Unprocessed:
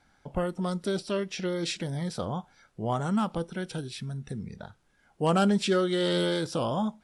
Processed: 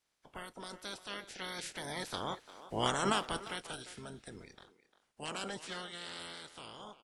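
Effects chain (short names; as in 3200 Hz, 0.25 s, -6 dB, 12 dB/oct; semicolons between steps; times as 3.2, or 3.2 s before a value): spectral limiter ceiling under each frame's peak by 26 dB; Doppler pass-by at 2.77, 9 m/s, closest 4.2 m; speakerphone echo 0.35 s, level -13 dB; gain -2.5 dB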